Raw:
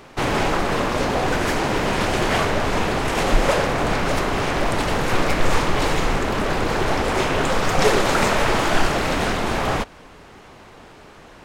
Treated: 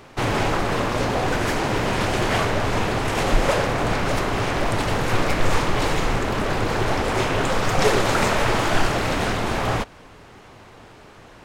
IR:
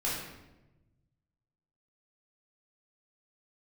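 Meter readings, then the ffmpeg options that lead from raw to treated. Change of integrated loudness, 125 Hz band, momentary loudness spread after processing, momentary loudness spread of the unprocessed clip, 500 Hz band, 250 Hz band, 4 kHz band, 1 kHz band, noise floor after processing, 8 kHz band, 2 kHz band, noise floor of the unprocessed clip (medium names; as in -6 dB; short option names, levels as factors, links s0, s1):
-1.0 dB, +1.5 dB, 3 LU, 4 LU, -1.5 dB, -1.5 dB, -1.5 dB, -1.5 dB, -46 dBFS, -1.5 dB, -1.5 dB, -45 dBFS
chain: -af "equalizer=f=110:t=o:w=0.2:g=9.5,volume=0.841"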